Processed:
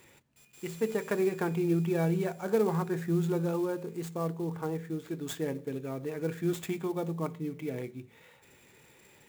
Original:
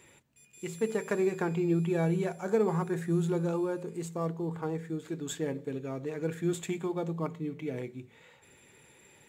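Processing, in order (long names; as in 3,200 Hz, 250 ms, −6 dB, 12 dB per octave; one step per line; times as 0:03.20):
converter with an unsteady clock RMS 0.021 ms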